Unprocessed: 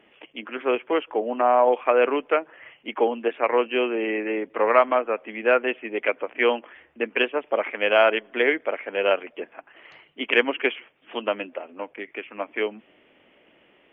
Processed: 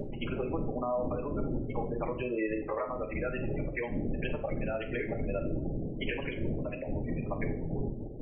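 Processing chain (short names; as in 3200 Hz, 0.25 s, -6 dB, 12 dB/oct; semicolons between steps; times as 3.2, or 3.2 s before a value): wind noise 320 Hz -22 dBFS; compressor 16:1, threshold -28 dBFS, peak gain reduction 21 dB; spectral gate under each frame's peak -15 dB strong; time stretch by phase-locked vocoder 0.59×; on a send: reverb RT60 0.50 s, pre-delay 3 ms, DRR 3 dB; on the sum: gain -1.5 dB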